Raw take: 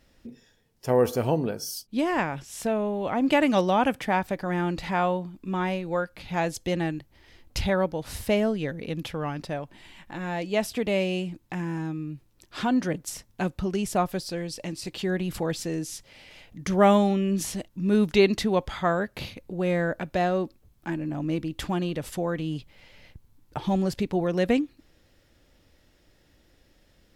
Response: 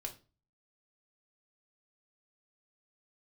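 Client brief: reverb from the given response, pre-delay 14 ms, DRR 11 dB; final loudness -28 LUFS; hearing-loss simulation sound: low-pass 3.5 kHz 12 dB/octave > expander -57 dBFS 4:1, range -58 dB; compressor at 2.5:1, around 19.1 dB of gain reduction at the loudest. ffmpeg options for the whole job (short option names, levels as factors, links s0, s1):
-filter_complex "[0:a]acompressor=threshold=0.00631:ratio=2.5,asplit=2[s0][s1];[1:a]atrim=start_sample=2205,adelay=14[s2];[s1][s2]afir=irnorm=-1:irlink=0,volume=0.355[s3];[s0][s3]amix=inputs=2:normalize=0,lowpass=3500,agate=range=0.00126:threshold=0.00141:ratio=4,volume=4.73"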